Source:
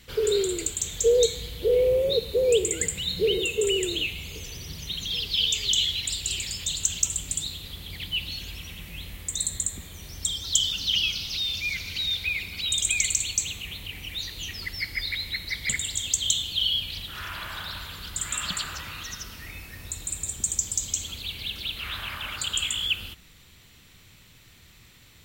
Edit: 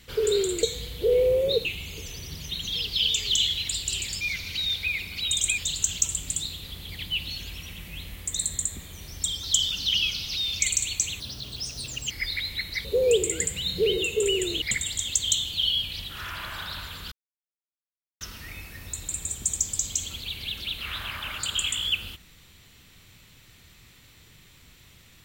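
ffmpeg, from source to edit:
-filter_complex "[0:a]asplit=12[a][b][c][d][e][f][g][h][i][j][k][l];[a]atrim=end=0.632[m];[b]atrim=start=1.238:end=2.262[n];[c]atrim=start=4.028:end=6.592[o];[d]atrim=start=11.618:end=12.992[p];[e]atrim=start=6.588:end=11.622[q];[f]atrim=start=12.988:end=13.584[r];[g]atrim=start=13.58:end=14.86,asetpts=PTS-STARTPTS,asetrate=62181,aresample=44100,atrim=end_sample=40034,asetpts=PTS-STARTPTS[s];[h]atrim=start=14.856:end=15.602[t];[i]atrim=start=2.258:end=4.032[u];[j]atrim=start=15.598:end=18.1,asetpts=PTS-STARTPTS,afade=t=out:st=2.498:d=0.004:c=hsin[v];[k]atrim=start=18.1:end=19.19,asetpts=PTS-STARTPTS,volume=0[w];[l]atrim=start=19.19,asetpts=PTS-STARTPTS,afade=t=in:d=0.004:c=hsin[x];[m][n]acrossfade=d=0.004:c1=hsin:c2=hsin[y];[y][o]acrossfade=d=0.004:c1=hsin:c2=hsin[z];[z][p]acrossfade=d=0.004:c1=hsin:c2=hsin[aa];[aa][q]acrossfade=d=0.004:c1=hsin:c2=hsin[ab];[ab][r]acrossfade=d=0.004:c1=hsin:c2=hsin[ac];[ac][s]acrossfade=d=0.004:c1=hsin:c2=hsin[ad];[ad][t]acrossfade=d=0.004:c1=hsin:c2=hsin[ae];[ae][u]acrossfade=d=0.004:c1=hsin:c2=hsin[af];[v][w][x]concat=n=3:v=0:a=1[ag];[af][ag]acrossfade=d=0.004:c1=hsin:c2=hsin"

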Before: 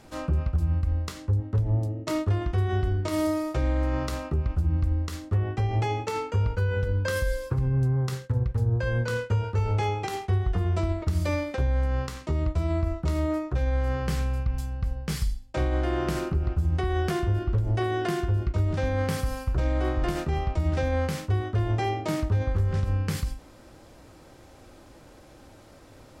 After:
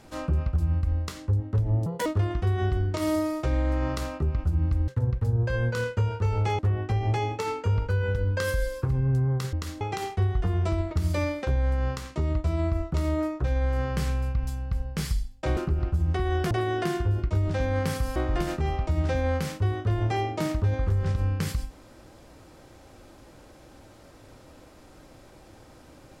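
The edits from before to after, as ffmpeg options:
-filter_complex "[0:a]asplit=10[a][b][c][d][e][f][g][h][i][j];[a]atrim=end=1.864[k];[b]atrim=start=1.86:end=2.17,asetpts=PTS-STARTPTS,asetrate=68796,aresample=44100,atrim=end_sample=8763,asetpts=PTS-STARTPTS[l];[c]atrim=start=2.166:end=4.992[m];[d]atrim=start=8.208:end=9.922[n];[e]atrim=start=5.268:end=8.212[o];[f]atrim=start=4.988:end=5.272[p];[g]atrim=start=9.918:end=15.682[q];[h]atrim=start=16.208:end=17.152[r];[i]atrim=start=17.738:end=19.392[s];[j]atrim=start=19.838[t];[k][l]acrossfade=d=0.004:c1=hsin:c2=hsin[u];[u][m]acrossfade=d=0.004:c1=hsin:c2=hsin[v];[v][n]acrossfade=d=0.004:c1=hsin:c2=hsin[w];[w][o]acrossfade=d=0.004:c1=hsin:c2=hsin[x];[x][p]acrossfade=d=0.004:c1=hsin:c2=hsin[y];[y][q]acrossfade=d=0.004:c1=hsin:c2=hsin[z];[z][r]acrossfade=d=0.004:c1=hsin:c2=hsin[aa];[aa][s]acrossfade=d=0.004:c1=hsin:c2=hsin[ab];[ab][t]acrossfade=d=0.004:c1=hsin:c2=hsin"

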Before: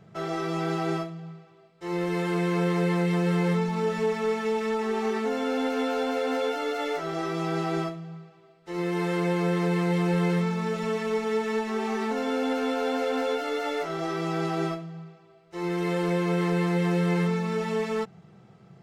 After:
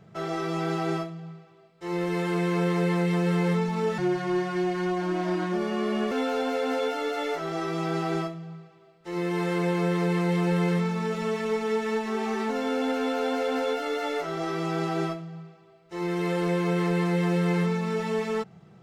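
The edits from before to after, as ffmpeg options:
-filter_complex "[0:a]asplit=3[a][b][c];[a]atrim=end=3.984[d];[b]atrim=start=3.98:end=5.73,asetpts=PTS-STARTPTS,asetrate=36162,aresample=44100[e];[c]atrim=start=5.726[f];[d][e]acrossfade=d=0.004:c1=hsin:c2=hsin[g];[g][f]acrossfade=d=0.004:c1=hsin:c2=hsin"

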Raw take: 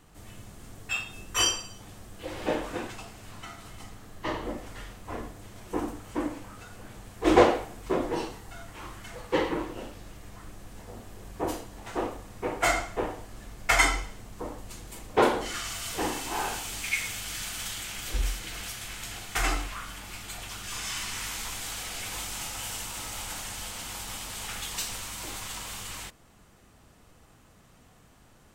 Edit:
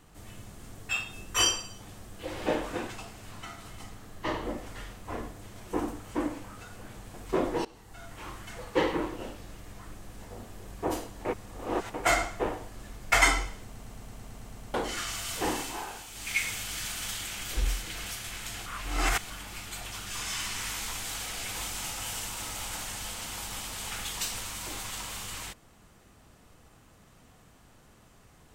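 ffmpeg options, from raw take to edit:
-filter_complex "[0:a]asplit=19[a][b][c][d][e][f][g][h][i][j][k][l][m][n][o][p][q][r][s];[a]atrim=end=7.142[t];[b]atrim=start=7.708:end=8.22,asetpts=PTS-STARTPTS,afade=t=out:st=0.508:d=0.004:c=hsin:silence=0.0944061[u];[c]atrim=start=8.22:end=11.822,asetpts=PTS-STARTPTS,afade=t=in:d=0.51:silence=0.0944061[v];[d]atrim=start=11.818:end=12.512,asetpts=PTS-STARTPTS,areverse[w];[e]atrim=start=12.508:end=14.322[x];[f]atrim=start=14.208:end=14.322[y];[g]atrim=start=14.208:end=14.322[z];[h]atrim=start=14.208:end=14.322[aa];[i]atrim=start=14.208:end=14.322[ab];[j]atrim=start=14.208:end=14.322[ac];[k]atrim=start=14.208:end=14.322[ad];[l]atrim=start=14.208:end=14.322[ae];[m]atrim=start=14.208:end=14.322[af];[n]atrim=start=14.208:end=14.322[ag];[o]atrim=start=15.308:end=16.42,asetpts=PTS-STARTPTS,afade=t=out:st=0.872:d=0.24:silence=0.354813[ah];[p]atrim=start=16.42:end=16.69,asetpts=PTS-STARTPTS,volume=-9dB[ai];[q]atrim=start=16.69:end=19.232,asetpts=PTS-STARTPTS,afade=t=in:d=0.24:silence=0.354813[aj];[r]atrim=start=19.228:end=19.872,asetpts=PTS-STARTPTS,areverse[ak];[s]atrim=start=19.868[al];[u][v]concat=n=2:v=0:a=1[am];[t][am]acrossfade=d=0.004:c1=hsin:c2=hsin[an];[an][w]acrossfade=d=0.004:c1=hsin:c2=hsin[ao];[ao][x]acrossfade=d=0.004:c1=hsin:c2=hsin[ap];[ap][y]acrossfade=d=0.004:c1=hsin:c2=hsin[aq];[aq][z]acrossfade=d=0.004:c1=hsin:c2=hsin[ar];[ar][aa]acrossfade=d=0.004:c1=hsin:c2=hsin[as];[as][ab]acrossfade=d=0.004:c1=hsin:c2=hsin[at];[at][ac]acrossfade=d=0.004:c1=hsin:c2=hsin[au];[au][ad]acrossfade=d=0.004:c1=hsin:c2=hsin[av];[av][ae]acrossfade=d=0.004:c1=hsin:c2=hsin[aw];[aw][af]acrossfade=d=0.004:c1=hsin:c2=hsin[ax];[ax][ag]acrossfade=d=0.004:c1=hsin:c2=hsin[ay];[ah][ai][aj]concat=n=3:v=0:a=1[az];[ay][az]acrossfade=d=0.004:c1=hsin:c2=hsin[ba];[ba][ak]acrossfade=d=0.004:c1=hsin:c2=hsin[bb];[bb][al]acrossfade=d=0.004:c1=hsin:c2=hsin"

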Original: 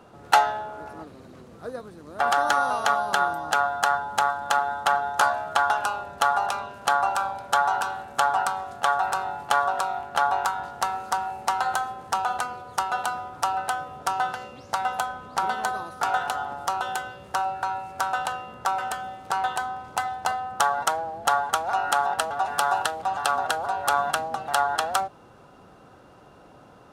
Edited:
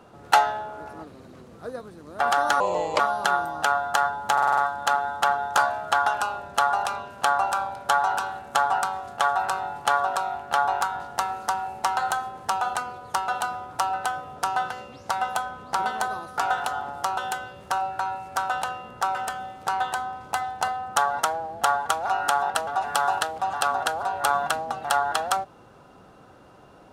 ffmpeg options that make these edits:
-filter_complex "[0:a]asplit=8[a][b][c][d][e][f][g][h];[a]atrim=end=2.604[i];[b]atrim=start=2.6:end=2.88,asetpts=PTS-STARTPTS,asetrate=31311,aresample=44100[j];[c]atrim=start=2.876:end=4.262[k];[d]atrim=start=4.208:end=4.262[l];[e]atrim=start=4.208:end=4.262[m];[f]atrim=start=4.208:end=4.262[n];[g]atrim=start=4.208:end=4.262[o];[h]atrim=start=4.208[p];[i][j]acrossfade=d=0.004:c1=hsin:c2=hsin[q];[q][k]acrossfade=d=0.004:c1=hsin:c2=hsin[r];[r][l]acrossfade=d=0.004:c1=hsin:c2=hsin[s];[s][m]acrossfade=d=0.004:c1=hsin:c2=hsin[t];[t][n]acrossfade=d=0.004:c1=hsin:c2=hsin[u];[u][o]acrossfade=d=0.004:c1=hsin:c2=hsin[v];[v][p]acrossfade=d=0.004:c1=hsin:c2=hsin"

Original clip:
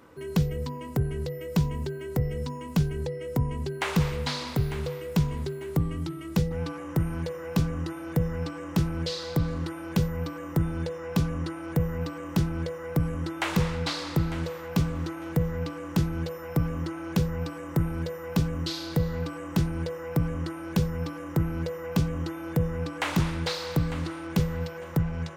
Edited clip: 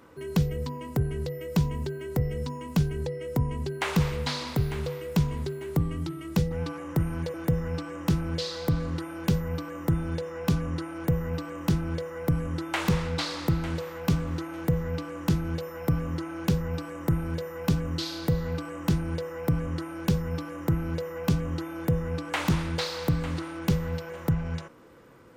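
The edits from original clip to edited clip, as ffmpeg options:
-filter_complex "[0:a]asplit=2[a][b];[a]atrim=end=7.342[c];[b]atrim=start=8.018[d];[c][d]acrossfade=d=0.004:c1=hsin:c2=hsin"

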